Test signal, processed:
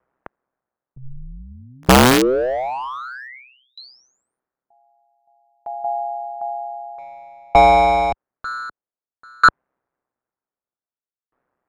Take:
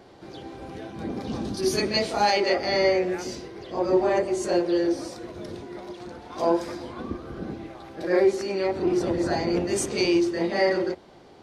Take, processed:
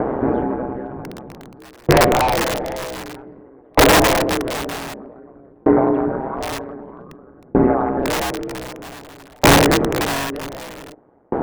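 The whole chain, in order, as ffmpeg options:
-af "highpass=360,aeval=exprs='val(0)*sin(2*PI*64*n/s)':c=same,lowpass=f=1600:w=0.5412,lowpass=f=1600:w=1.3066,volume=37.6,asoftclip=hard,volume=0.0266,aemphasis=mode=reproduction:type=riaa,aeval=exprs='(mod(17.8*val(0)+1,2)-1)/17.8':c=same,alimiter=level_in=56.2:limit=0.891:release=50:level=0:latency=1,aeval=exprs='val(0)*pow(10,-38*if(lt(mod(0.53*n/s,1),2*abs(0.53)/1000),1-mod(0.53*n/s,1)/(2*abs(0.53)/1000),(mod(0.53*n/s,1)-2*abs(0.53)/1000)/(1-2*abs(0.53)/1000))/20)':c=same,volume=0.794"

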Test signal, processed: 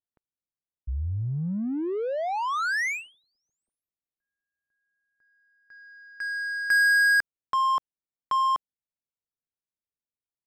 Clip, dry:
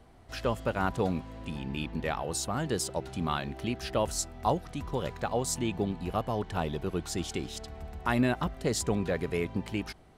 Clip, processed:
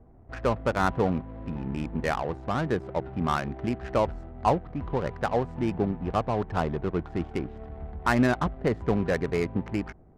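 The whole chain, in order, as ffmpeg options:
-af "highshelf=f=2900:t=q:w=1.5:g=-11.5,adynamicsmooth=sensitivity=5.5:basefreq=530,volume=1.58"

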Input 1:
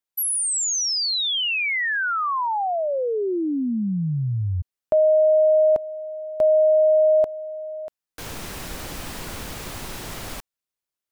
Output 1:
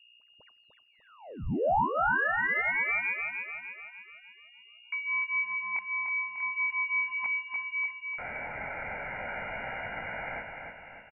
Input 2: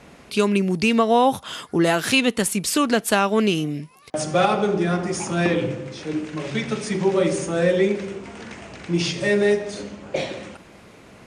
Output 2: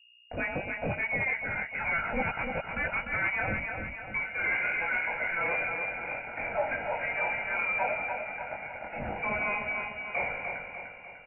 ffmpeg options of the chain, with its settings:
-filter_complex "[0:a]highpass=f=550:w=0.5412,highpass=f=550:w=1.3066,bandreject=f=1700:w=5.4,agate=range=0.0224:threshold=0.00891:ratio=3:release=29:detection=rms,afftfilt=real='re*gte(hypot(re,im),0.00562)':imag='im*gte(hypot(re,im),0.00562)':win_size=1024:overlap=0.75,aecho=1:1:1.4:0.64,areverse,acompressor=threshold=0.0501:ratio=20:attack=97:release=151:knee=1:detection=rms,areverse,aeval=exprs='val(0)+0.00126*(sin(2*PI*60*n/s)+sin(2*PI*2*60*n/s)/2+sin(2*PI*3*60*n/s)/3+sin(2*PI*4*60*n/s)/4+sin(2*PI*5*60*n/s)/5)':c=same,flanger=delay=16.5:depth=7.8:speed=0.41,asoftclip=type=tanh:threshold=0.0398,crystalizer=i=6.5:c=0,asplit=2[s0][s1];[s1]aecho=0:1:298|596|894|1192|1490|1788|2086:0.531|0.276|0.144|0.0746|0.0388|0.0202|0.0105[s2];[s0][s2]amix=inputs=2:normalize=0,lowpass=f=2500:t=q:w=0.5098,lowpass=f=2500:t=q:w=0.6013,lowpass=f=2500:t=q:w=0.9,lowpass=f=2500:t=q:w=2.563,afreqshift=-2900"

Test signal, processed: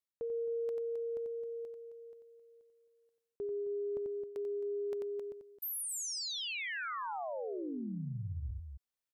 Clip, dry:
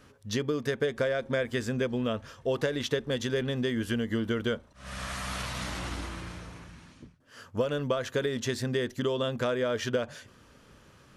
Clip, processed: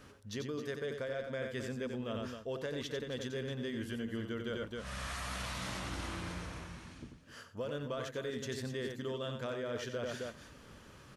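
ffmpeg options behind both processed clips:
-af "aecho=1:1:90.38|265.3:0.447|0.251,areverse,acompressor=threshold=0.0141:ratio=5,areverse"

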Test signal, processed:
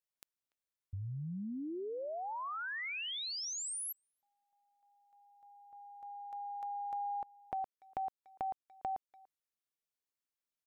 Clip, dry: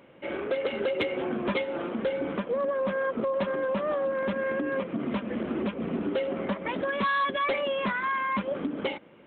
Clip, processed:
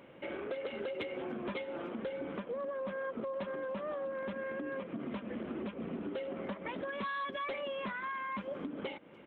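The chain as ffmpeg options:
-filter_complex "[0:a]acompressor=threshold=0.01:ratio=2.5,asplit=2[s0][s1];[s1]adelay=290,highpass=300,lowpass=3400,asoftclip=type=hard:threshold=0.0224,volume=0.0708[s2];[s0][s2]amix=inputs=2:normalize=0,volume=0.891"

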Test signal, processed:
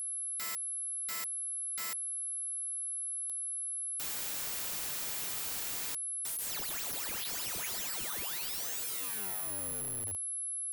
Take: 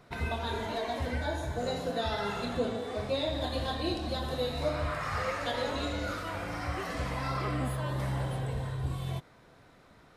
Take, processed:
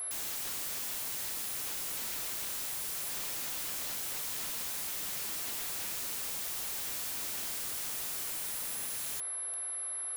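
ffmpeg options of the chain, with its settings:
-filter_complex "[0:a]acrossover=split=460 7600:gain=0.0708 1 0.126[s0][s1][s2];[s0][s1][s2]amix=inputs=3:normalize=0,asplit=2[s3][s4];[s4]alimiter=level_in=1.88:limit=0.0631:level=0:latency=1:release=295,volume=0.531,volume=1.12[s5];[s3][s5]amix=inputs=2:normalize=0,aeval=exprs='val(0)+0.0178*sin(2*PI*11000*n/s)':c=same,aeval=exprs='(mod(42.2*val(0)+1,2)-1)/42.2':c=same"

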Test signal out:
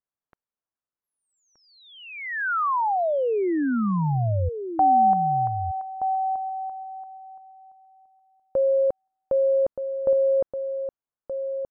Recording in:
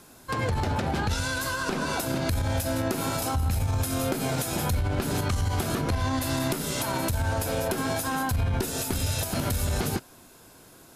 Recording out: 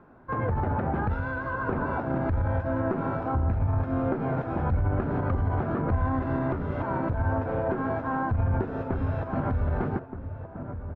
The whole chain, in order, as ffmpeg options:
-filter_complex "[0:a]lowpass=f=1500:w=0.5412,lowpass=f=1500:w=1.3066,aemphasis=mode=production:type=50kf,asplit=2[s0][s1];[s1]adelay=1224,volume=0.398,highshelf=f=4000:g=-27.6[s2];[s0][s2]amix=inputs=2:normalize=0"

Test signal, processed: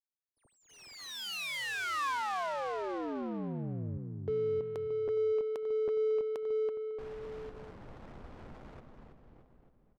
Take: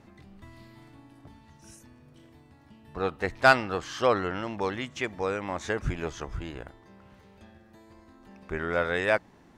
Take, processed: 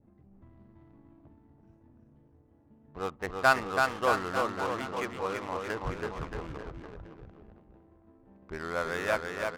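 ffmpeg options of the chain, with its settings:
-af "aecho=1:1:330|627|894.3|1135|1351:0.631|0.398|0.251|0.158|0.1,adynamicequalizer=threshold=0.00631:dfrequency=1100:dqfactor=2.4:tfrequency=1100:tqfactor=2.4:attack=5:release=100:ratio=0.375:range=3:mode=boostabove:tftype=bell,adynamicsmooth=sensitivity=6:basefreq=580,volume=0.473"

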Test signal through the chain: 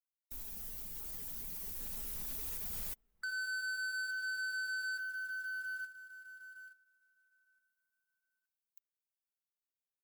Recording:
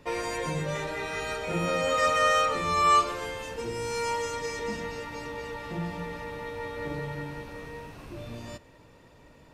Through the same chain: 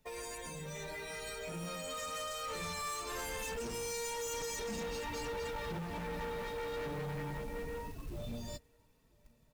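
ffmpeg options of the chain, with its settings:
-filter_complex "[0:a]aemphasis=mode=production:type=75fm,afftdn=nr=17:nf=-39,lowshelf=f=150:g=6.5,aecho=1:1:4.6:0.44,acompressor=threshold=0.0282:ratio=8,alimiter=level_in=1.58:limit=0.0631:level=0:latency=1:release=196,volume=0.631,dynaudnorm=f=430:g=11:m=2.99,volume=25.1,asoftclip=hard,volume=0.0398,flanger=delay=1.2:depth=6:regen=-49:speed=0.36:shape=triangular,acrusher=bits=3:mode=log:mix=0:aa=0.000001,asoftclip=type=tanh:threshold=0.0178,asplit=2[s0][s1];[s1]adelay=991.3,volume=0.0355,highshelf=f=4000:g=-22.3[s2];[s0][s2]amix=inputs=2:normalize=0,volume=0.891"

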